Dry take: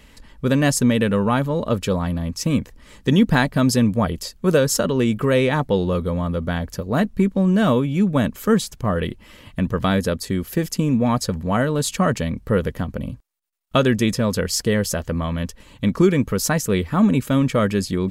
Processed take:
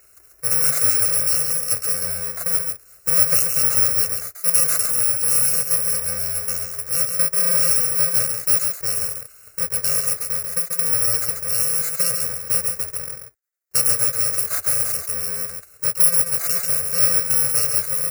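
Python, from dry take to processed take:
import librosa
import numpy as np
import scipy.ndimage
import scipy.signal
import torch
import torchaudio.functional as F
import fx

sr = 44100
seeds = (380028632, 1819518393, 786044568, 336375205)

y = fx.bit_reversed(x, sr, seeds[0], block=128)
y = scipy.signal.sosfilt(scipy.signal.butter(2, 87.0, 'highpass', fs=sr, output='sos'), y)
y = fx.low_shelf(y, sr, hz=370.0, db=-9.5)
y = fx.fixed_phaser(y, sr, hz=890.0, stages=6)
y = y + 10.0 ** (-5.5 / 20.0) * np.pad(y, (int(138 * sr / 1000.0), 0))[:len(y)]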